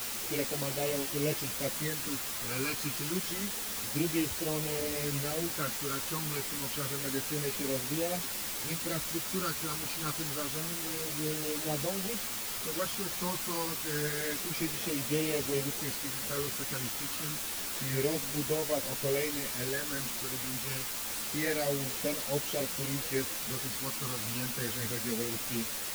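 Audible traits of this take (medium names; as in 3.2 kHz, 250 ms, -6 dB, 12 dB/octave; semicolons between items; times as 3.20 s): phasing stages 12, 0.28 Hz, lowest notch 590–1500 Hz; a quantiser's noise floor 6-bit, dither triangular; a shimmering, thickened sound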